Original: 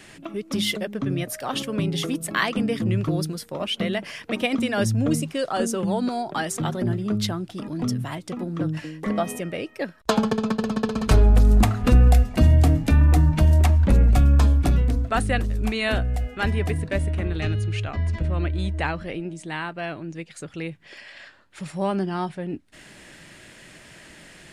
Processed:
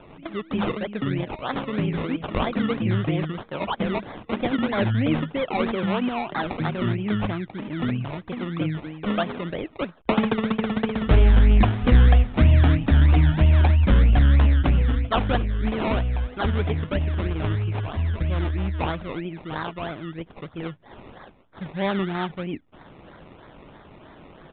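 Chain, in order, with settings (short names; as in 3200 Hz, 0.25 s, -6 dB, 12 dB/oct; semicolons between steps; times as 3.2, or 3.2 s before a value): decimation with a swept rate 22×, swing 60% 3.1 Hz; downsampling 8000 Hz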